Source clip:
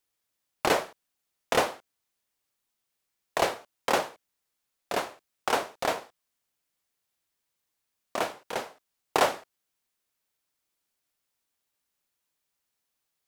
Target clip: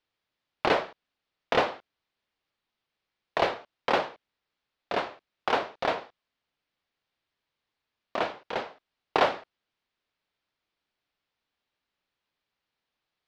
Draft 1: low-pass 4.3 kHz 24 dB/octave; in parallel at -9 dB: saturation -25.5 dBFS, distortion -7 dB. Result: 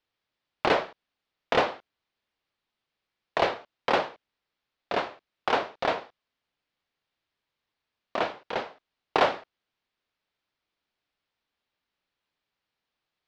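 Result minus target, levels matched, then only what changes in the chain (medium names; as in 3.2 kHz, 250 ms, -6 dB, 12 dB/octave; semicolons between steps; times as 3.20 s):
saturation: distortion -5 dB
change: saturation -36.5 dBFS, distortion -2 dB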